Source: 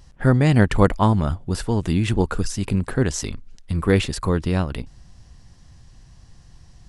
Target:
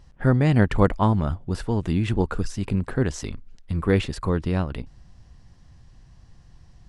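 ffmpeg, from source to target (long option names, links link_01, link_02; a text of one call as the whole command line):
ffmpeg -i in.wav -af "highshelf=frequency=4900:gain=-10,volume=-2.5dB" out.wav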